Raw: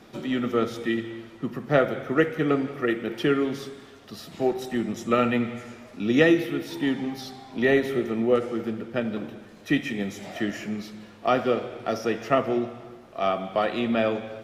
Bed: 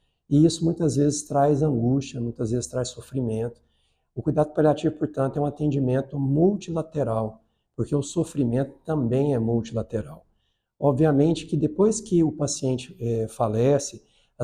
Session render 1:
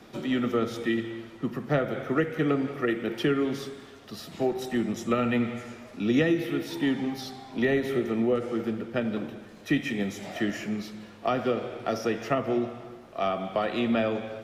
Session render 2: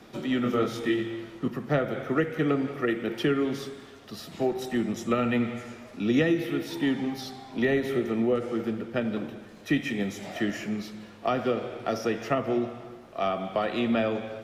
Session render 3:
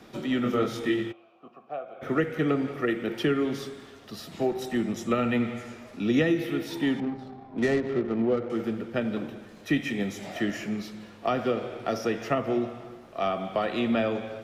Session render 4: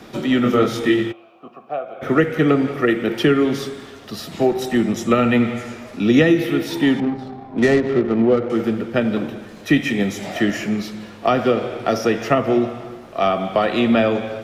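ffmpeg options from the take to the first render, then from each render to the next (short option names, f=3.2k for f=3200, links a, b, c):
-filter_complex "[0:a]acrossover=split=230[a][b];[b]acompressor=threshold=-23dB:ratio=5[c];[a][c]amix=inputs=2:normalize=0"
-filter_complex "[0:a]asettb=1/sr,asplit=3[a][b][c];[a]atrim=end=0.434[d];[b]atrim=start=0.43:end=1.48,asetpts=PTS-STARTPTS,afade=t=in:d=0.004:c=qsin,afade=t=out:st=1.046:d=0.004:c=qsin,asplit=2[e][f];[f]adelay=24,volume=-3dB[g];[e][g]amix=inputs=2:normalize=0,atrim=end_sample=46305[h];[c]atrim=start=1.476[i];[d][h]acrossfade=d=0.004:c1=hsin:c2=qsin[j];[j][i]acrossfade=d=0.004:c1=qsin:c2=hsin"
-filter_complex "[0:a]asplit=3[a][b][c];[a]afade=t=out:st=1.11:d=0.02[d];[b]asplit=3[e][f][g];[e]bandpass=f=730:t=q:w=8,volume=0dB[h];[f]bandpass=f=1.09k:t=q:w=8,volume=-6dB[i];[g]bandpass=f=2.44k:t=q:w=8,volume=-9dB[j];[h][i][j]amix=inputs=3:normalize=0,afade=t=in:st=1.11:d=0.02,afade=t=out:st=2.01:d=0.02[k];[c]afade=t=in:st=2.01:d=0.02[l];[d][k][l]amix=inputs=3:normalize=0,asettb=1/sr,asplit=3[m][n][o];[m]atrim=end=7.004[p];[n]atrim=start=7:end=8.5,asetpts=PTS-STARTPTS,afade=t=in:d=0.004:c=qsin,afade=t=out:st=1.496:d=0.004:c=qsin,adynamicsmooth=sensitivity=3:basefreq=780[q];[o]atrim=start=8.496[r];[p][q]acrossfade=d=0.004:c1=hsin:c2=qsin[s];[s][r]acrossfade=d=0.004:c1=qsin:c2=hsin"
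-af "volume=9.5dB"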